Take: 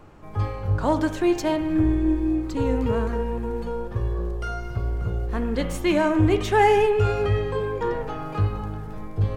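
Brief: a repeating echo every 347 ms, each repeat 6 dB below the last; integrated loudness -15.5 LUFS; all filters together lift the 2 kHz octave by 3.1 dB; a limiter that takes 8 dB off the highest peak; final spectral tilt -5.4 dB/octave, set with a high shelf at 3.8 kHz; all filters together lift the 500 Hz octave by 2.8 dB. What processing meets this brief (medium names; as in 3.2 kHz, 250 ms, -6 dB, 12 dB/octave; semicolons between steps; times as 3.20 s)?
peaking EQ 500 Hz +3.5 dB; peaking EQ 2 kHz +5 dB; treble shelf 3.8 kHz -5.5 dB; peak limiter -13 dBFS; feedback delay 347 ms, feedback 50%, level -6 dB; trim +7 dB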